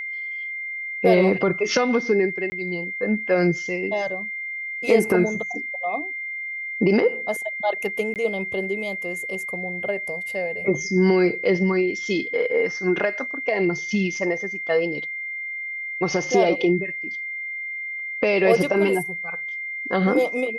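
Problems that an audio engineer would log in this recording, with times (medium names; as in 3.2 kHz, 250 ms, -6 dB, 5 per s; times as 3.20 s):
whine 2.1 kHz -28 dBFS
2.50–2.52 s: dropout 20 ms
8.14–8.16 s: dropout 18 ms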